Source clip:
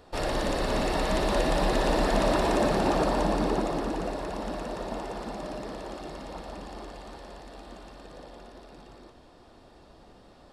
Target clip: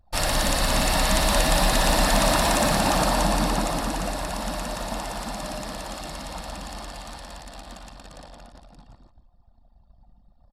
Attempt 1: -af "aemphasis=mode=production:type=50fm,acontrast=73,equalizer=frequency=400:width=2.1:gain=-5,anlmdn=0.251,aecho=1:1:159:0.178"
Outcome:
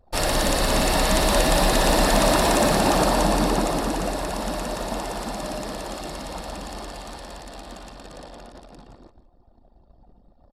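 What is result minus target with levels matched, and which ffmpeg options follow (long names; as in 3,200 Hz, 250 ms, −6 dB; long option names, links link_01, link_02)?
500 Hz band +2.5 dB
-af "aemphasis=mode=production:type=50fm,acontrast=73,equalizer=frequency=400:width=2.1:gain=-16.5,anlmdn=0.251,aecho=1:1:159:0.178"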